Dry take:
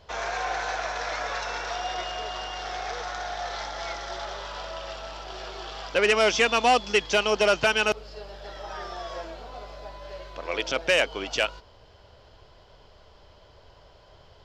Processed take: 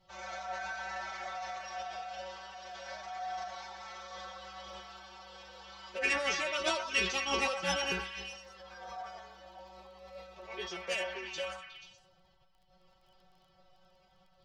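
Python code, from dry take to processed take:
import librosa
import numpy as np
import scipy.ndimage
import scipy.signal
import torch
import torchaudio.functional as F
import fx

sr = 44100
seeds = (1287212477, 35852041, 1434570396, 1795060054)

y = fx.stiff_resonator(x, sr, f0_hz=140.0, decay_s=0.28, stiffness=0.002)
y = fx.pitch_keep_formants(y, sr, semitones=4.5)
y = fx.echo_stepped(y, sr, ms=121, hz=1100.0, octaves=0.7, feedback_pct=70, wet_db=-3.5)
y = fx.dmg_crackle(y, sr, seeds[0], per_s=15.0, level_db=-56.0)
y = fx.sustainer(y, sr, db_per_s=74.0)
y = y * 10.0 ** (-1.5 / 20.0)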